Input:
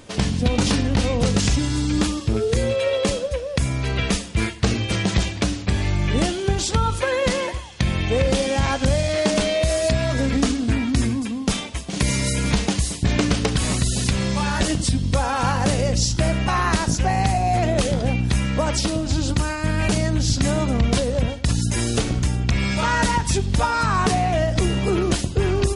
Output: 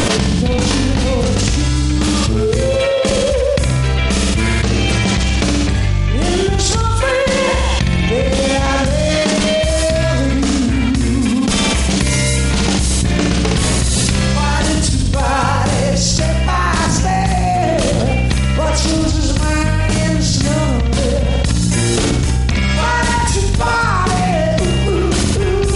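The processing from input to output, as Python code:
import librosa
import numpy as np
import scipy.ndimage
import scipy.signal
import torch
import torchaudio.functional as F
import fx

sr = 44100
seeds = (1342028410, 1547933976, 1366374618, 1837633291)

y = fx.room_flutter(x, sr, wall_m=10.7, rt60_s=0.74)
y = fx.env_flatten(y, sr, amount_pct=100)
y = F.gain(torch.from_numpy(y), -1.0).numpy()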